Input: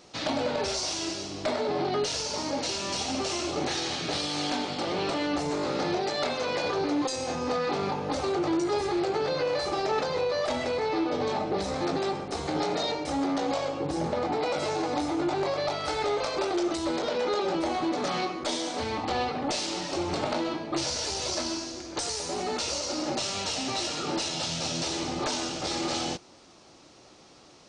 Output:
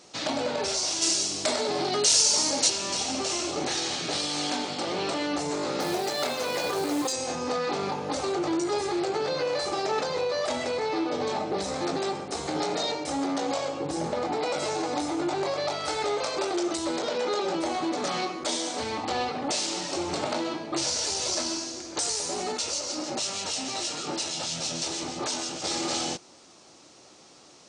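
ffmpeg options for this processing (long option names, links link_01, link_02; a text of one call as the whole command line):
ffmpeg -i in.wav -filter_complex "[0:a]asplit=3[link_01][link_02][link_03];[link_01]afade=type=out:start_time=1.01:duration=0.02[link_04];[link_02]aemphasis=mode=production:type=75kf,afade=type=in:start_time=1.01:duration=0.02,afade=type=out:start_time=2.68:duration=0.02[link_05];[link_03]afade=type=in:start_time=2.68:duration=0.02[link_06];[link_04][link_05][link_06]amix=inputs=3:normalize=0,asettb=1/sr,asplit=3[link_07][link_08][link_09];[link_07]atrim=end=5.804[link_10];[link_08]atrim=start=5.8:end=7.13,asetpts=PTS-STARTPTS,afade=type=in:duration=0.004:curve=qsin,afade=type=out:start_time=1.326:duration=0.004:curve=qsin,acrusher=bits=4:mode=log:mix=0:aa=0.000001[link_11];[link_09]atrim=start=7.126[link_12];[link_10][link_11]acrossfade=duration=0.004:curve1=hsin:curve2=qsin[link_13];[link_13][link_12]acrossfade=duration=0.004:curve1=qsin:curve2=hsin,asettb=1/sr,asplit=3[link_14][link_15][link_16];[link_14]atrim=end=22.524[link_17];[link_15]atrim=start=22.52:end=25.64,asetpts=PTS-STARTPTS,afade=type=in:duration=0.004:curve=qsin,afade=type=out:start_time=3.116:duration=0.004:curve=qsin,acrossover=split=2300[link_18][link_19];[link_18]aeval=exprs='val(0)*(1-0.5/2+0.5/2*cos(2*PI*6.3*n/s))':channel_layout=same[link_20];[link_19]aeval=exprs='val(0)*(1-0.5/2-0.5/2*cos(2*PI*6.3*n/s))':channel_layout=same[link_21];[link_20][link_21]amix=inputs=2:normalize=0[link_22];[link_16]atrim=start=25.636[link_23];[link_17][link_22]acrossfade=duration=0.004:curve1=hsin:curve2=qsin[link_24];[link_24][link_23]acrossfade=duration=0.004:curve1=qsin:curve2=hsin,highpass=frequency=140:poles=1,equalizer=frequency=8000:width_type=o:width=0.93:gain=7.5" out.wav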